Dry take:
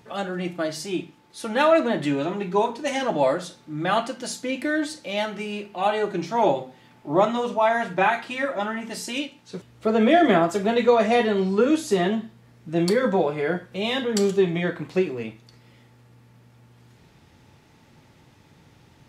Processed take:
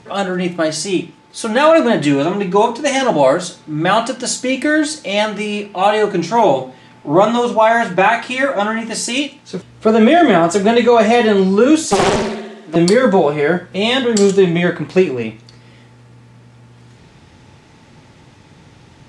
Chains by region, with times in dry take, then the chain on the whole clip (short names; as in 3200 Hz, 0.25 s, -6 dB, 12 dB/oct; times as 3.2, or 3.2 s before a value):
11.85–12.76 Bessel high-pass 320 Hz, order 6 + flutter echo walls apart 11 m, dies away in 1.1 s + Doppler distortion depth 0.86 ms
whole clip: steep low-pass 10000 Hz 36 dB/oct; dynamic EQ 7800 Hz, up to +5 dB, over -50 dBFS, Q 1.3; maximiser +11 dB; gain -1 dB